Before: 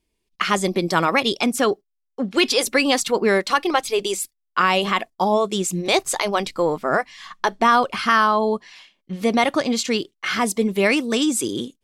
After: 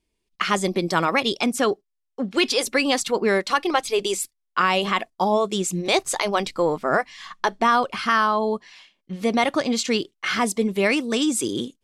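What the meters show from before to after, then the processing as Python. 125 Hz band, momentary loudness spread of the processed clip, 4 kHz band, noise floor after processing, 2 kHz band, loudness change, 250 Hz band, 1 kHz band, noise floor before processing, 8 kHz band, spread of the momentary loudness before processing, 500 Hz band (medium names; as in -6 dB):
-1.5 dB, 7 LU, -2.0 dB, -77 dBFS, -2.0 dB, -2.0 dB, -2.0 dB, -2.0 dB, -76 dBFS, -2.0 dB, 8 LU, -2.0 dB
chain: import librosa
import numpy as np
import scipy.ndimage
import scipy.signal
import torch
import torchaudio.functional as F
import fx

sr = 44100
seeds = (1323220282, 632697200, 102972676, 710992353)

p1 = fx.rider(x, sr, range_db=4, speed_s=0.5)
p2 = x + F.gain(torch.from_numpy(p1), -1.5).numpy()
p3 = scipy.signal.sosfilt(scipy.signal.butter(2, 12000.0, 'lowpass', fs=sr, output='sos'), p2)
y = F.gain(torch.from_numpy(p3), -7.0).numpy()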